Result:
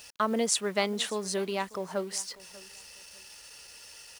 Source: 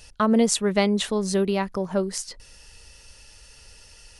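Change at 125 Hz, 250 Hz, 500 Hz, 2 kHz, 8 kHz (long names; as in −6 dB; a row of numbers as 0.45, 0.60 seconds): −12.5, −12.0, −7.0, −3.5, −2.5 decibels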